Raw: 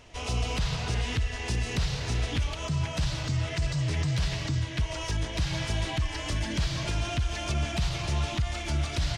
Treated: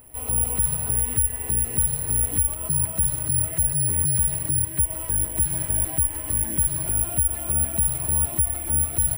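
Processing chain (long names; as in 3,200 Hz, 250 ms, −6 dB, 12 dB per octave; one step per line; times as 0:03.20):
head-to-tape spacing loss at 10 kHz 40 dB
bad sample-rate conversion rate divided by 4×, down none, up zero stuff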